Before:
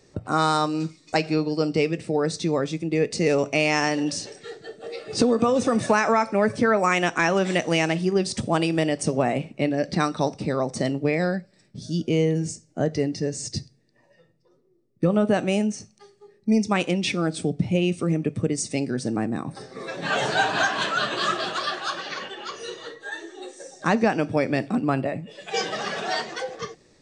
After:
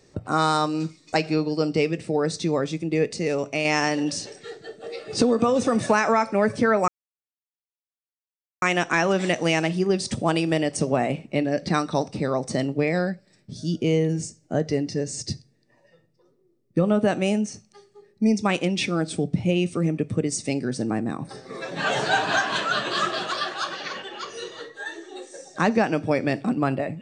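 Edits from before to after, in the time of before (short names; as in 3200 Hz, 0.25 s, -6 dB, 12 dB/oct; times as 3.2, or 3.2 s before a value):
3.13–3.65 gain -4 dB
6.88 insert silence 1.74 s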